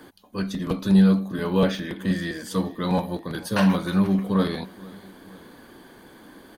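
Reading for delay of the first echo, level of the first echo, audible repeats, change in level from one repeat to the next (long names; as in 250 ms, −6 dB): 473 ms, −22.0 dB, 2, −4.5 dB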